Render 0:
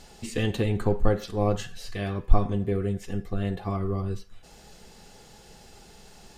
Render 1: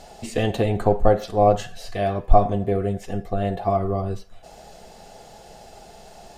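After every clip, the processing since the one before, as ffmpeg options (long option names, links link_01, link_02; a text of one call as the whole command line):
ffmpeg -i in.wav -af "equalizer=frequency=670:width_type=o:width=0.61:gain=15,volume=2dB" out.wav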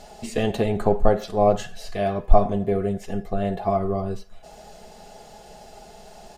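ffmpeg -i in.wav -af "aecho=1:1:4.8:0.32,volume=-1dB" out.wav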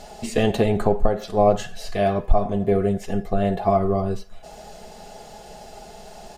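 ffmpeg -i in.wav -af "alimiter=limit=-10dB:level=0:latency=1:release=363,volume=3.5dB" out.wav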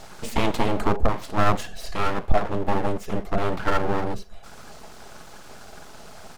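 ffmpeg -i in.wav -af "aeval=exprs='abs(val(0))':channel_layout=same" out.wav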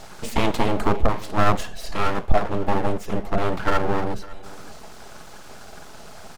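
ffmpeg -i in.wav -af "aecho=1:1:556:0.0944,volume=1.5dB" out.wav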